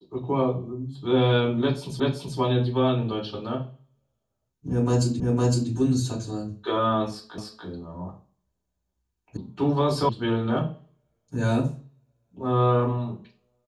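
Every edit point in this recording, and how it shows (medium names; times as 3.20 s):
2.00 s: repeat of the last 0.38 s
5.20 s: repeat of the last 0.51 s
7.38 s: repeat of the last 0.29 s
9.37 s: sound stops dead
10.09 s: sound stops dead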